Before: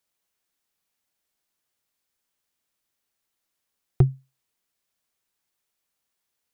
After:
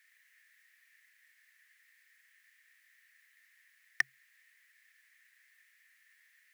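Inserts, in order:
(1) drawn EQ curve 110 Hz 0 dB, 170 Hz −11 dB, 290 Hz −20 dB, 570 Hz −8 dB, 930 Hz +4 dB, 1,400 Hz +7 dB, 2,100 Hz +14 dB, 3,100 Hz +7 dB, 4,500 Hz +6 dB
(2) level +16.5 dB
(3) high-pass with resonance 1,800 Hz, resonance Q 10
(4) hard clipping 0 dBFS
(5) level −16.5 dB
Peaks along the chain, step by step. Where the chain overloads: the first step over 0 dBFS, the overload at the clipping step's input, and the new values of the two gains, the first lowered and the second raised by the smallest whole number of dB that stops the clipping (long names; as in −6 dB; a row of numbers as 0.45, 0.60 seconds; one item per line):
−9.0, +7.5, +9.0, 0.0, −16.5 dBFS
step 2, 9.0 dB
step 2 +7.5 dB, step 5 −7.5 dB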